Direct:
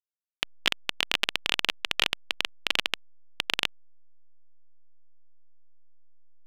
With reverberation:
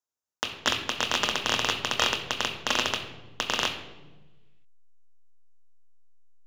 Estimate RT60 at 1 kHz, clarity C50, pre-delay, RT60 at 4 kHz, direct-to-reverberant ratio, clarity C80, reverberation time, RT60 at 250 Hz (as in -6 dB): 1.0 s, 9.0 dB, 3 ms, 0.70 s, 4.0 dB, 11.0 dB, 1.2 s, 1.6 s